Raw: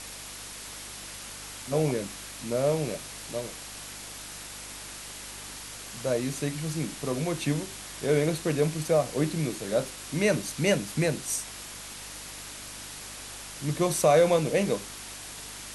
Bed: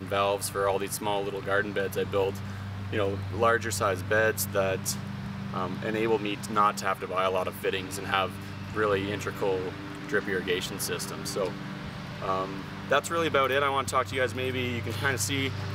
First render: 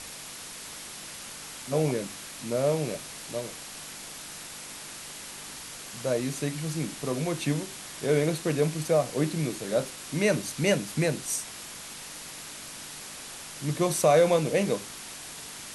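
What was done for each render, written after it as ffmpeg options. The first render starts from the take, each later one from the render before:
-af "bandreject=f=50:t=h:w=4,bandreject=f=100:t=h:w=4"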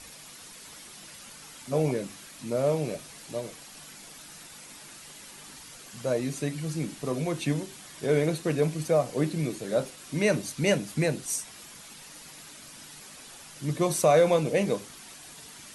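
-af "afftdn=nr=8:nf=-42"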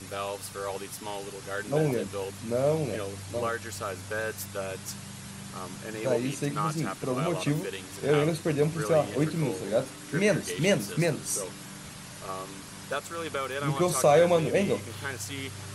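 -filter_complex "[1:a]volume=0.398[s0];[0:a][s0]amix=inputs=2:normalize=0"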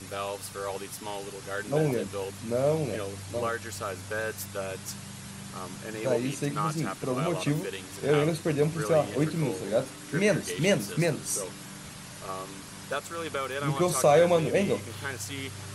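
-af anull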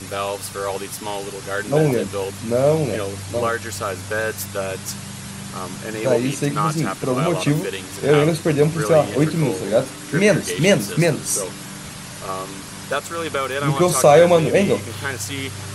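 -af "volume=2.82"

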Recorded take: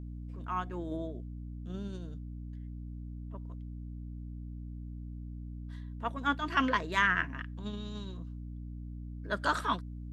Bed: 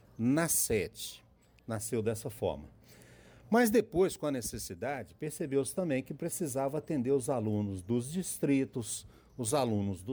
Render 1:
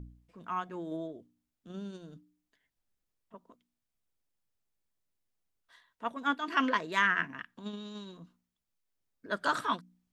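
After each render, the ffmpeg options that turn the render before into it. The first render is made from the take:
-af "bandreject=f=60:t=h:w=4,bandreject=f=120:t=h:w=4,bandreject=f=180:t=h:w=4,bandreject=f=240:t=h:w=4,bandreject=f=300:t=h:w=4"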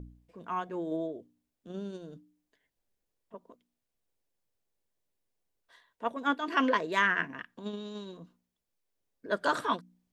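-af "equalizer=f=480:t=o:w=1.2:g=7.5,bandreject=f=1300:w=15"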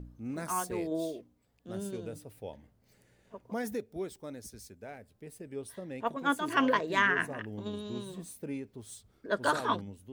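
-filter_complex "[1:a]volume=0.335[s0];[0:a][s0]amix=inputs=2:normalize=0"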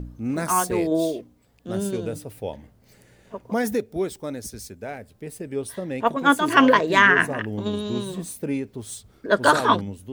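-af "volume=3.76,alimiter=limit=0.794:level=0:latency=1"

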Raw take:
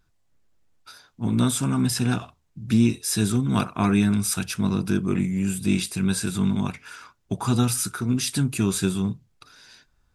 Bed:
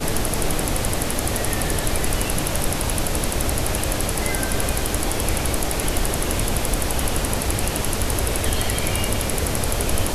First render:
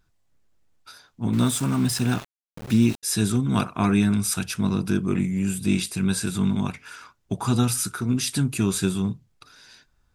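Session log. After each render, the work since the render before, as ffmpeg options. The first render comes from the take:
-filter_complex "[0:a]asettb=1/sr,asplit=3[s0][s1][s2];[s0]atrim=end=1.334[s3];[s1]atrim=start=1.33:end=3.03,asetpts=PTS-STARTPTS,afade=t=in:d=0.004:c=qsin,afade=t=out:st=1.696:d=0.004:c=qsin,aeval=exprs='val(0)*gte(abs(val(0)),0.0224)':c=same[s4];[s2]atrim=start=3.026[s5];[s3][s4]acrossfade=d=0.004:c1=hsin:c2=qsin[s6];[s6][s5]acrossfade=d=0.004:c1=qsin:c2=hsin"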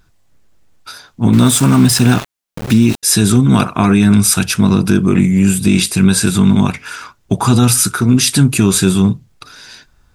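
-af "alimiter=level_in=4.73:limit=0.891:release=50:level=0:latency=1"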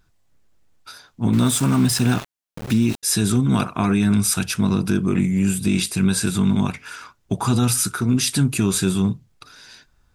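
-af "volume=0.398"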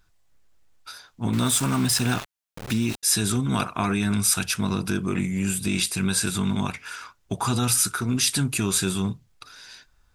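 -af "equalizer=f=190:w=0.42:g=-7"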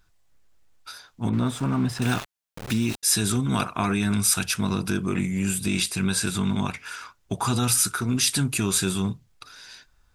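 -filter_complex "[0:a]asettb=1/sr,asplit=3[s0][s1][s2];[s0]atrim=end=1.294[s3];[s1]atrim=start=1.29:end=2.02,asetpts=PTS-STARTPTS,afade=t=in:d=0.004:c=qsin,afade=t=out:st=0.726:d=0.004:c=qsin,lowpass=f=1000:p=1[s4];[s2]atrim=start=2.016[s5];[s3][s4]acrossfade=d=0.004:c1=hsin:c2=qsin[s6];[s6][s5]acrossfade=d=0.004:c1=qsin:c2=hsin,asettb=1/sr,asplit=3[s7][s8][s9];[s7]atrim=end=5.834[s10];[s8]atrim=start=5.83:end=6.74,asetpts=PTS-STARTPTS,afade=t=in:d=0.004:c=qsin,afade=t=out:st=0.906:d=0.004:c=qsin,highshelf=f=8200:g=-4.5[s11];[s9]atrim=start=6.736[s12];[s10][s11]acrossfade=d=0.004:c1=hsin:c2=qsin[s13];[s13][s12]acrossfade=d=0.004:c1=qsin:c2=hsin"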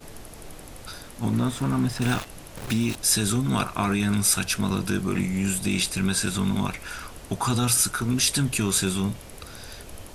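-filter_complex "[1:a]volume=0.1[s0];[0:a][s0]amix=inputs=2:normalize=0"

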